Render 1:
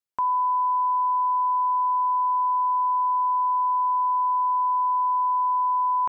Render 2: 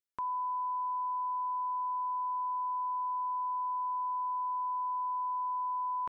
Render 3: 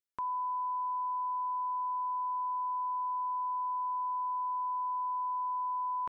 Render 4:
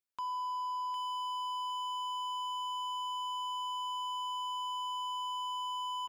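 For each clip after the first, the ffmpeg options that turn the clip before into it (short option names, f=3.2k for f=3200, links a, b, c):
-af "equalizer=f=810:t=o:w=0.77:g=-10.5,volume=-5dB"
-af anull
-filter_complex "[0:a]asplit=2[a][b];[b]aecho=0:1:756|1512|2268:0.224|0.0694|0.0215[c];[a][c]amix=inputs=2:normalize=0,aeval=exprs='0.0251*(abs(mod(val(0)/0.0251+3,4)-2)-1)':c=same,volume=-1.5dB"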